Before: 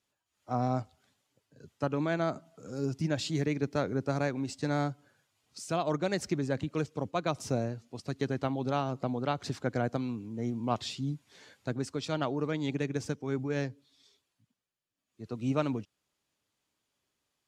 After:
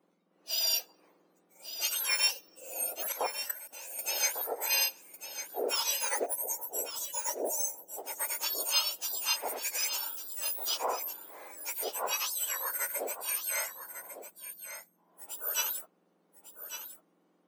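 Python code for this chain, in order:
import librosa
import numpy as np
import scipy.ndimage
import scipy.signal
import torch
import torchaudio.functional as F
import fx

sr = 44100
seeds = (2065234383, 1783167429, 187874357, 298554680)

p1 = fx.octave_mirror(x, sr, pivot_hz=1900.0)
p2 = fx.level_steps(p1, sr, step_db=17, at=(3.12, 3.99))
p3 = fx.spec_box(p2, sr, start_s=6.26, length_s=1.72, low_hz=1000.0, high_hz=5500.0, gain_db=-17)
p4 = 10.0 ** (-31.5 / 20.0) * np.tanh(p3 / 10.0 ** (-31.5 / 20.0))
p5 = p3 + (p4 * 10.0 ** (-9.0 / 20.0))
p6 = fx.hpss(p5, sr, part='percussive', gain_db=-4)
p7 = p6 + fx.echo_single(p6, sr, ms=1150, db=-10.5, dry=0)
y = p7 * 10.0 ** (6.0 / 20.0)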